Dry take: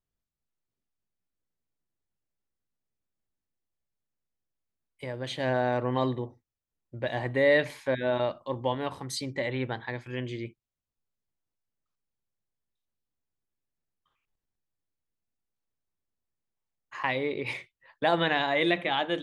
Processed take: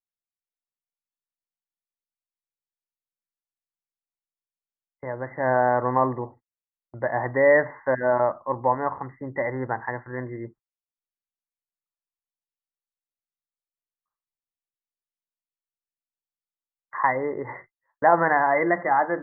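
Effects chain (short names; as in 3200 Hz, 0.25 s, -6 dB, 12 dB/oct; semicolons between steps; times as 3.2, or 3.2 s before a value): gate -49 dBFS, range -23 dB; brick-wall FIR low-pass 2100 Hz; bell 980 Hz +11 dB 1.5 oct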